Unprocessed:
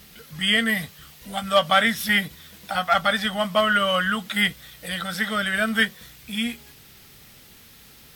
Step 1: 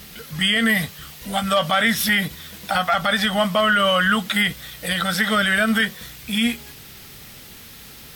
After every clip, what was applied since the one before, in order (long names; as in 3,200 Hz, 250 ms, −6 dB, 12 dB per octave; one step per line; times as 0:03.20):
boost into a limiter +16 dB
level −8.5 dB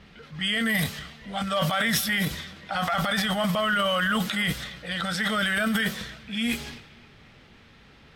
transient designer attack −2 dB, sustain +11 dB
feedback echo with a high-pass in the loop 261 ms, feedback 52%, high-pass 150 Hz, level −20.5 dB
low-pass that shuts in the quiet parts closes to 2,300 Hz, open at −14 dBFS
level −7 dB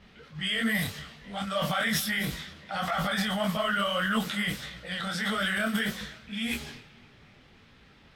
micro pitch shift up and down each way 58 cents